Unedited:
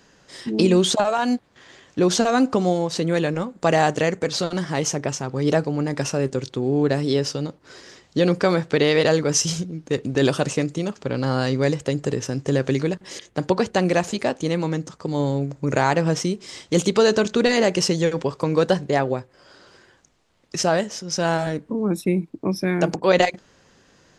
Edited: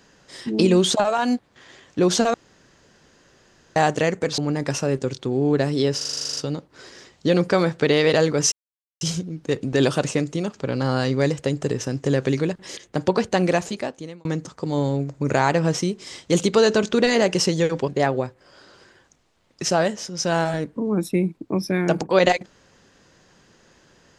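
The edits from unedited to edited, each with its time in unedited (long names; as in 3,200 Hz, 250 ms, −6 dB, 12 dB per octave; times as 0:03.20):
0:02.34–0:03.76: fill with room tone
0:04.38–0:05.69: remove
0:07.28: stutter 0.04 s, 11 plays
0:09.43: splice in silence 0.49 s
0:13.92–0:14.67: fade out
0:18.30–0:18.81: remove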